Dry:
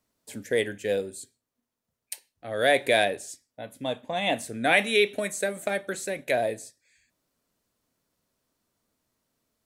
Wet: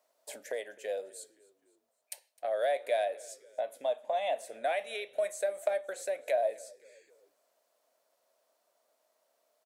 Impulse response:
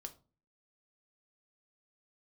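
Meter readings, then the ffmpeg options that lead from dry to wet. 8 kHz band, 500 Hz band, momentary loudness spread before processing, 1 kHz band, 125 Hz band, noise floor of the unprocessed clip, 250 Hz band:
-8.5 dB, -5.0 dB, 19 LU, -5.5 dB, under -30 dB, -85 dBFS, under -20 dB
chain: -filter_complex "[0:a]acompressor=threshold=0.00794:ratio=3,highpass=f=620:t=q:w=4.9,asplit=4[s0][s1][s2][s3];[s1]adelay=259,afreqshift=-49,volume=0.0668[s4];[s2]adelay=518,afreqshift=-98,volume=0.0313[s5];[s3]adelay=777,afreqshift=-147,volume=0.0148[s6];[s0][s4][s5][s6]amix=inputs=4:normalize=0"

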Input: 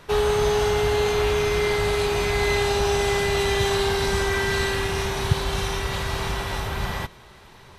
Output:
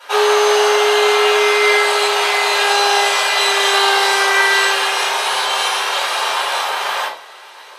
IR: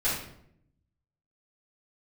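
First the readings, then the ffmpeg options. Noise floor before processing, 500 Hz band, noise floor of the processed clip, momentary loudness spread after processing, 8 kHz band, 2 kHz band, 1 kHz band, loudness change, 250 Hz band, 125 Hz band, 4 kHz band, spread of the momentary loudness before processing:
-48 dBFS, +5.0 dB, -38 dBFS, 6 LU, +10.5 dB, +12.0 dB, +12.0 dB, +9.0 dB, no reading, under -30 dB, +12.5 dB, 7 LU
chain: -filter_complex "[0:a]highpass=f=570:w=0.5412,highpass=f=570:w=1.3066[s0];[1:a]atrim=start_sample=2205,asetrate=83790,aresample=44100[s1];[s0][s1]afir=irnorm=-1:irlink=0,volume=2.51"

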